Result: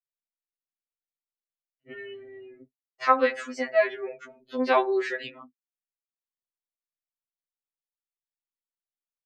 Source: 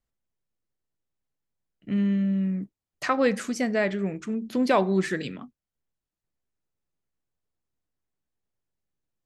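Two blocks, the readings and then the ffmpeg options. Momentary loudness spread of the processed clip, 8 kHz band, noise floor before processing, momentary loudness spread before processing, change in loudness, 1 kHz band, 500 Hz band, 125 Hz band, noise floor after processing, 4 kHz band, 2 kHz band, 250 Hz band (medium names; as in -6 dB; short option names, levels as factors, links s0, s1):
19 LU, no reading, under -85 dBFS, 11 LU, +0.5 dB, +3.5 dB, +1.0 dB, under -30 dB, under -85 dBFS, -1.0 dB, +1.5 dB, -10.5 dB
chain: -filter_complex "[0:a]afftdn=nr=20:nf=-46,acrossover=split=420 4900:gain=0.112 1 0.141[s0][s1][s2];[s0][s1][s2]amix=inputs=3:normalize=0,afftfilt=real='re*2.45*eq(mod(b,6),0)':imag='im*2.45*eq(mod(b,6),0)':win_size=2048:overlap=0.75,volume=1.58"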